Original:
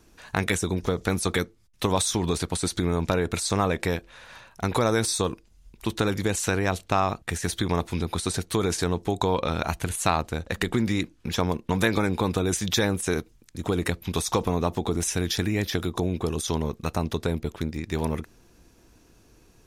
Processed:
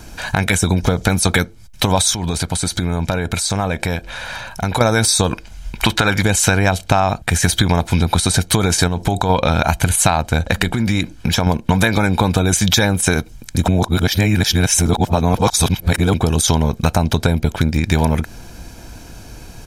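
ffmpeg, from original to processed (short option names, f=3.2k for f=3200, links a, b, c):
-filter_complex "[0:a]asettb=1/sr,asplit=3[a][b][c];[a]atrim=end=2.144[d];[b]atrim=start=2.14:end=4.81,asetpts=PTS-STARTPTS,afade=t=in:d=0.004:c=qsin,afade=t=out:st=2.666:d=0.004:c=qsin,acompressor=threshold=-46dB:ratio=2:attack=3.2:release=140:knee=1:detection=peak[e];[c]atrim=start=4.806[f];[d][e]acrossfade=d=0.004:c1=hsin:c2=qsin[g];[g][f]acrossfade=d=0.004:c1=qsin:c2=hsin,asettb=1/sr,asplit=3[h][i][j];[h]atrim=end=5.314[k];[i]atrim=start=5.31:end=6.23,asetpts=PTS-STARTPTS,afade=t=in:d=0.004:c=qsin,afade=t=out:st=0.916:d=0.004:c=qsin,equalizer=f=1.7k:w=0.42:g=9[l];[j]atrim=start=6.226[m];[k][l]acrossfade=d=0.004:c1=hsin:c2=qsin[n];[n][m]acrossfade=d=0.004:c1=qsin:c2=hsin,asplit=3[o][p][q];[o]afade=t=out:st=8.87:d=0.02[r];[p]acompressor=threshold=-28dB:ratio=4:attack=3.2:release=140:knee=1:detection=peak,afade=t=in:st=8.87:d=0.02,afade=t=out:st=9.29:d=0.02[s];[q]afade=t=in:st=9.29:d=0.02[t];[r][s][t]amix=inputs=3:normalize=0,asettb=1/sr,asplit=3[u][v][w];[u]atrim=end=10.684[x];[v]atrim=start=10.68:end=11.47,asetpts=PTS-STARTPTS,afade=t=in:d=0.004:c=qsin,afade=t=out:st=0.786:d=0.004:c=qsin,acompressor=threshold=-37dB:ratio=2:attack=3.2:release=140:knee=1:detection=peak[y];[w]atrim=start=11.466[z];[x][y]acrossfade=d=0.004:c1=hsin:c2=qsin[aa];[aa][z]acrossfade=d=0.004:c1=qsin:c2=hsin,asplit=3[ab][ac][ad];[ab]atrim=end=13.682[ae];[ac]atrim=start=13.678:end=16.142,asetpts=PTS-STARTPTS,areverse[af];[ad]atrim=start=16.138[ag];[ae][af]acrossfade=d=0.004:c1=hsin:c2=hsin[ah];[ah][ag]acrossfade=d=0.004:c1=hsin:c2=hsin,aecho=1:1:1.3:0.48,acompressor=threshold=-31dB:ratio=5,alimiter=level_in=20dB:limit=-1dB:release=50:level=0:latency=1,volume=-1dB"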